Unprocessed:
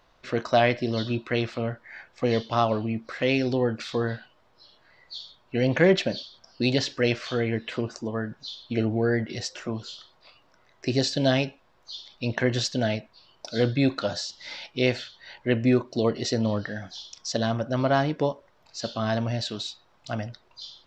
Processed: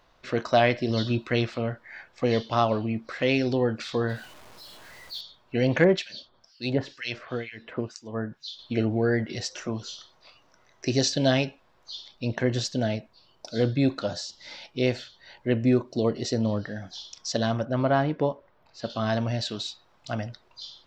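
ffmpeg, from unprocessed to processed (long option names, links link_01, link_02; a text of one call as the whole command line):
ffmpeg -i in.wav -filter_complex "[0:a]asettb=1/sr,asplit=3[link_01][link_02][link_03];[link_01]atrim=end=0.894[link_04];[link_02]atrim=start=0.89:end=1.45,asetpts=PTS-STARTPTS,afade=type=in:duration=0.004:curve=qsin,afade=type=out:start_time=0.556:duration=0.004:curve=qsin,bass=frequency=250:gain=3,treble=frequency=4000:gain=4[link_05];[link_03]atrim=start=1.446[link_06];[link_04][link_05]acrossfade=duration=0.004:curve1=hsin:curve2=qsin[link_07];[link_07][link_06]acrossfade=duration=0.004:curve1=qsin:curve2=hsin,asettb=1/sr,asplit=3[link_08][link_09][link_10];[link_08]atrim=end=4.094[link_11];[link_09]atrim=start=4.09:end=5.21,asetpts=PTS-STARTPTS,afade=type=in:duration=0.004:curve=qsin,afade=type=out:start_time=1.116:duration=0.004:curve=qsin,aeval=exprs='val(0)+0.5*0.00631*sgn(val(0))':channel_layout=same[link_12];[link_10]atrim=start=5.206[link_13];[link_11][link_12]acrossfade=duration=0.004:curve1=hsin:curve2=qsin[link_14];[link_14][link_13]acrossfade=duration=0.004:curve1=qsin:curve2=hsin,asettb=1/sr,asplit=3[link_15][link_16][link_17];[link_15]atrim=end=5.844[link_18];[link_16]atrim=start=5.84:end=8.59,asetpts=PTS-STARTPTS,afade=type=in:duration=0.004:curve=qsin,afade=type=out:start_time=2.746:duration=0.004:curve=qsin,acrossover=split=1800[link_19][link_20];[link_19]aeval=exprs='val(0)*(1-1/2+1/2*cos(2*PI*2.1*n/s))':channel_layout=same[link_21];[link_20]aeval=exprs='val(0)*(1-1/2-1/2*cos(2*PI*2.1*n/s))':channel_layout=same[link_22];[link_21][link_22]amix=inputs=2:normalize=0[link_23];[link_17]atrim=start=8.586[link_24];[link_18][link_23]acrossfade=duration=0.004:curve1=hsin:curve2=qsin[link_25];[link_25][link_24]acrossfade=duration=0.004:curve1=qsin:curve2=hsin,asettb=1/sr,asplit=3[link_26][link_27][link_28];[link_26]atrim=end=9.514[link_29];[link_27]atrim=start=9.51:end=11.12,asetpts=PTS-STARTPTS,afade=type=in:duration=0.004:curve=qsin,afade=type=out:start_time=1.606:duration=0.004:curve=qsin,equalizer=frequency=6000:width=6.3:gain=9.5[link_30];[link_28]atrim=start=11.116[link_31];[link_29][link_30]acrossfade=duration=0.004:curve1=hsin:curve2=qsin[link_32];[link_32][link_31]acrossfade=duration=0.004:curve1=qsin:curve2=hsin,asettb=1/sr,asplit=3[link_33][link_34][link_35];[link_33]atrim=end=12.114[link_36];[link_34]atrim=start=12.11:end=16.93,asetpts=PTS-STARTPTS,afade=type=in:duration=0.004:curve=qsin,afade=type=out:start_time=4.816:duration=0.004:curve=qsin,equalizer=frequency=2200:width_type=o:width=2.8:gain=-5[link_37];[link_35]atrim=start=16.926[link_38];[link_36][link_37]acrossfade=duration=0.004:curve1=hsin:curve2=qsin[link_39];[link_39][link_38]acrossfade=duration=0.004:curve1=qsin:curve2=hsin,asettb=1/sr,asplit=3[link_40][link_41][link_42];[link_40]atrim=end=17.654[link_43];[link_41]atrim=start=17.65:end=18.9,asetpts=PTS-STARTPTS,afade=type=in:duration=0.004:curve=qsin,afade=type=out:start_time=1.246:duration=0.004:curve=qsin,equalizer=frequency=7100:width=0.68:gain=-14[link_44];[link_42]atrim=start=18.896[link_45];[link_43][link_44]acrossfade=duration=0.004:curve1=hsin:curve2=qsin[link_46];[link_46][link_45]acrossfade=duration=0.004:curve1=qsin:curve2=hsin" out.wav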